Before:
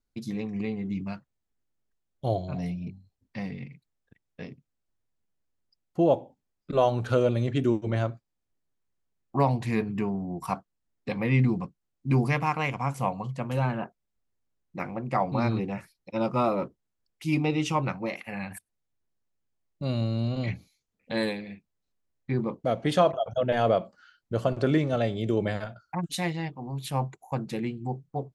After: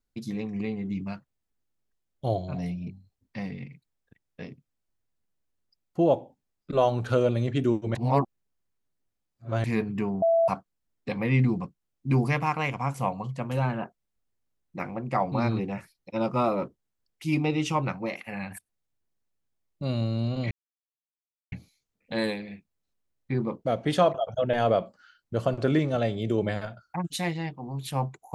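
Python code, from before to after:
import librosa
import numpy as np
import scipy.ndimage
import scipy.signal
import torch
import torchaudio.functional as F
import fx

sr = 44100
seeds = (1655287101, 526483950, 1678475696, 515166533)

y = fx.edit(x, sr, fx.reverse_span(start_s=7.95, length_s=1.69),
    fx.bleep(start_s=10.22, length_s=0.26, hz=665.0, db=-18.0),
    fx.insert_silence(at_s=20.51, length_s=1.01), tone=tone)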